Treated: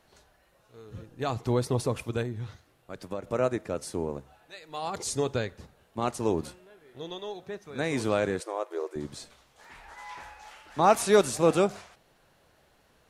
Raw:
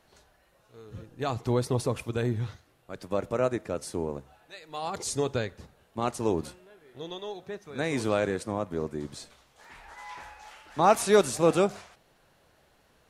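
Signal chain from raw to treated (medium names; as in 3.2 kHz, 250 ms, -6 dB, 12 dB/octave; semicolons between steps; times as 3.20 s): 2.22–3.27 s: compression 2.5:1, threshold -34 dBFS, peak gain reduction 7.5 dB; 8.40–8.96 s: brick-wall FIR high-pass 320 Hz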